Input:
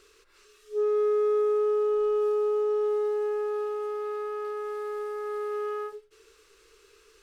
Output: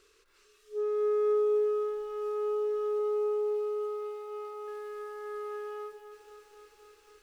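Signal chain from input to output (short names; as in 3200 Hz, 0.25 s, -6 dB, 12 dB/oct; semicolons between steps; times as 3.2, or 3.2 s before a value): 2.99–4.68 notch comb 560 Hz; lo-fi delay 0.257 s, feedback 80%, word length 10-bit, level -9.5 dB; gain -5.5 dB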